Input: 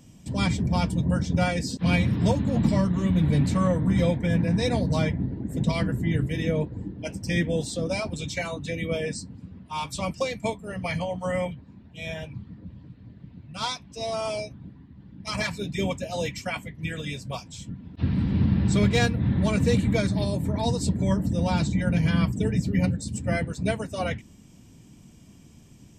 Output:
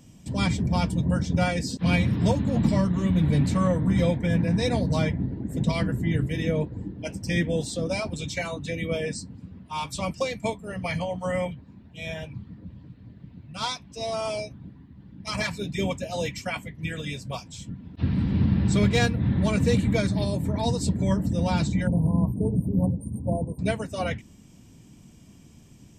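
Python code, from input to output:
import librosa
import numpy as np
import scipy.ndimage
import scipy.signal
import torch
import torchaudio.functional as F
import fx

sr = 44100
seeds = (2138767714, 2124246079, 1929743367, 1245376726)

y = fx.brickwall_bandstop(x, sr, low_hz=1100.0, high_hz=8500.0, at=(21.87, 23.59))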